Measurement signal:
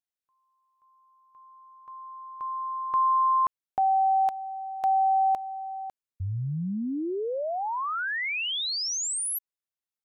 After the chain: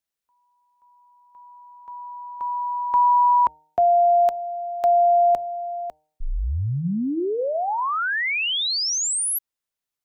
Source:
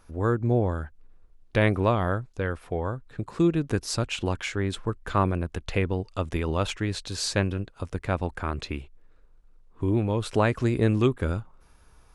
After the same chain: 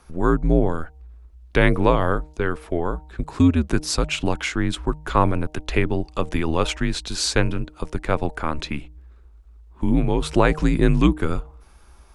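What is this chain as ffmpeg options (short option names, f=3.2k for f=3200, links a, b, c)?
-af "afreqshift=-74,bandreject=f=153.5:t=h:w=4,bandreject=f=307:t=h:w=4,bandreject=f=460.5:t=h:w=4,bandreject=f=614:t=h:w=4,bandreject=f=767.5:t=h:w=4,bandreject=f=921:t=h:w=4,volume=6dB"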